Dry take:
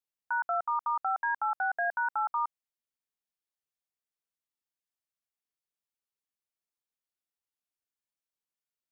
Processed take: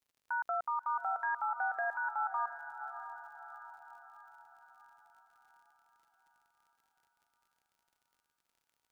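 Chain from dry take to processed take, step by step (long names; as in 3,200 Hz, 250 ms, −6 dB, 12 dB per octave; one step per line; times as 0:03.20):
brickwall limiter −29 dBFS, peak gain reduction 6.5 dB
surface crackle 65 per second −60 dBFS
feedback delay with all-pass diffusion 631 ms, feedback 52%, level −10 dB
level +1.5 dB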